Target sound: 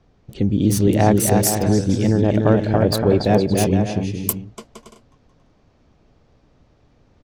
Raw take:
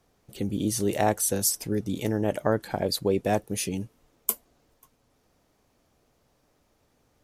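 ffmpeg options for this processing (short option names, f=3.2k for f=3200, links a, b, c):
-filter_complex "[0:a]lowshelf=f=270:g=10.5,acrossover=split=5900[a][b];[a]aecho=1:1:290|464|568.4|631|668.6:0.631|0.398|0.251|0.158|0.1[c];[b]acrusher=bits=4:mix=0:aa=0.5[d];[c][d]amix=inputs=2:normalize=0,volume=4dB"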